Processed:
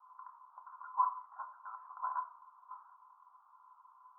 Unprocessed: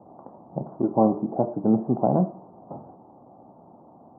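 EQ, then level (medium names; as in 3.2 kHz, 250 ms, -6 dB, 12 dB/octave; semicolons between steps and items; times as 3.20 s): rippled Chebyshev high-pass 980 Hz, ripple 9 dB; distance through air 470 m; tilt EQ -2 dB/octave; +13.5 dB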